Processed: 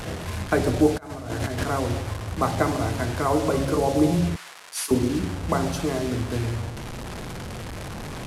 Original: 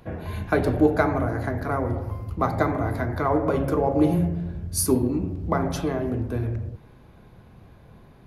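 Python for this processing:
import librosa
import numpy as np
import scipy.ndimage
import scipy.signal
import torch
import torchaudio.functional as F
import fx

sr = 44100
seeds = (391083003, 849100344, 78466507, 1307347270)

y = fx.delta_mod(x, sr, bps=64000, step_db=-28.0)
y = fx.over_compress(y, sr, threshold_db=-29.0, ratio=-0.5, at=(0.95, 1.64))
y = fx.highpass(y, sr, hz=1200.0, slope=12, at=(4.36, 4.91))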